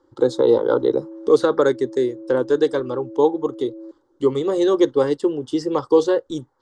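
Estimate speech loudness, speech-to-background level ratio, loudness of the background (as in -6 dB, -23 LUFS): -20.0 LUFS, 17.5 dB, -37.5 LUFS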